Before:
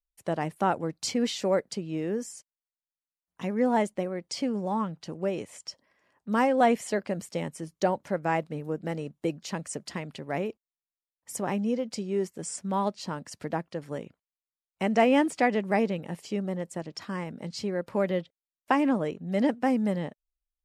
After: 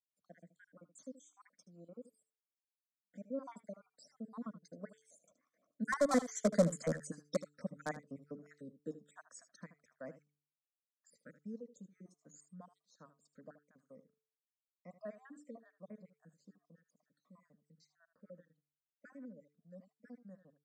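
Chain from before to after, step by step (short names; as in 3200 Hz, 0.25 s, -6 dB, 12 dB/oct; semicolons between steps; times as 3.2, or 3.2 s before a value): random spectral dropouts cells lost 63%; Doppler pass-by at 6.61, 26 m/s, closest 7.7 m; HPF 84 Hz 24 dB/oct; high shelf 2400 Hz -9 dB; de-hum 146.7 Hz, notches 3; in parallel at -11 dB: wrapped overs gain 29 dB; on the sum: synth low-pass 7400 Hz, resonance Q 2.2; fixed phaser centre 560 Hz, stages 8; on a send: echo 77 ms -14.5 dB; on the sum: gain +5.5 dB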